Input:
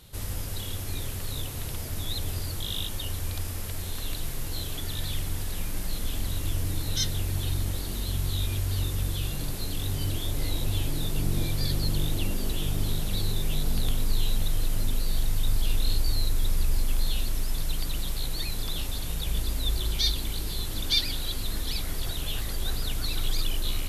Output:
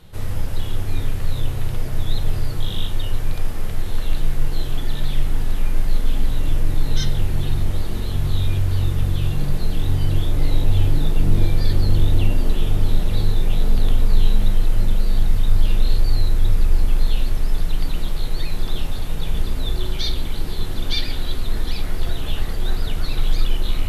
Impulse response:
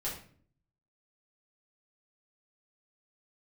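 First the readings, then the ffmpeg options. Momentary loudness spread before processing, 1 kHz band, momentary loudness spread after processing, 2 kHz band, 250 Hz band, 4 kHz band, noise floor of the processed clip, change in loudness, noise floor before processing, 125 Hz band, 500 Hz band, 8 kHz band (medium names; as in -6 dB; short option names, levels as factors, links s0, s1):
6 LU, +6.5 dB, 7 LU, +4.0 dB, +7.0 dB, -0.5 dB, -25 dBFS, +6.5 dB, -33 dBFS, +8.0 dB, +7.5 dB, -5.5 dB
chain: -filter_complex "[0:a]highshelf=f=4400:g=-10,asplit=2[s0][s1];[1:a]atrim=start_sample=2205,lowpass=3500[s2];[s1][s2]afir=irnorm=-1:irlink=0,volume=0.668[s3];[s0][s3]amix=inputs=2:normalize=0,volume=1.41"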